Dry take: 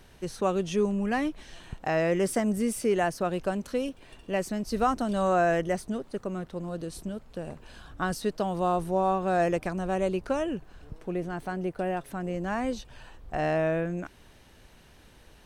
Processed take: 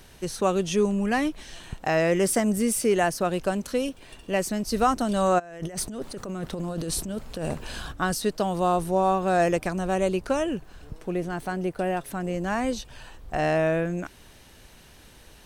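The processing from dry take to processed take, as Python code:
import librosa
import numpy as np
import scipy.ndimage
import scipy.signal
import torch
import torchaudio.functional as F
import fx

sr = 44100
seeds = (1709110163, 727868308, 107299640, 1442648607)

y = fx.high_shelf(x, sr, hz=3900.0, db=7.0)
y = fx.over_compress(y, sr, threshold_db=-38.0, ratio=-1.0, at=(5.38, 7.91), fade=0.02)
y = y * librosa.db_to_amplitude(3.0)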